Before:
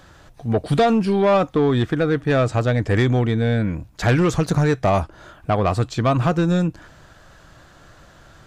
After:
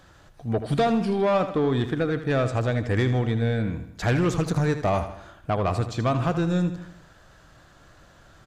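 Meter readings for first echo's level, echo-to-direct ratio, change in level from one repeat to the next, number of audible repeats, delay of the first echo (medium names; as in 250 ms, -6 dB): -11.0 dB, -9.5 dB, -6.0 dB, 4, 79 ms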